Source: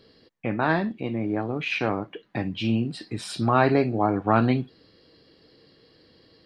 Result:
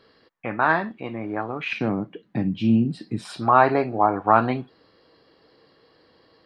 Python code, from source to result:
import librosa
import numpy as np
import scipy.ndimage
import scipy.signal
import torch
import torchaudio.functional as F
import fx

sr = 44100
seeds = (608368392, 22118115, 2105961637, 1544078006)

y = fx.peak_eq(x, sr, hz=fx.steps((0.0, 1200.0), (1.73, 190.0), (3.25, 980.0)), db=13.5, octaves=2.0)
y = y * 10.0 ** (-6.0 / 20.0)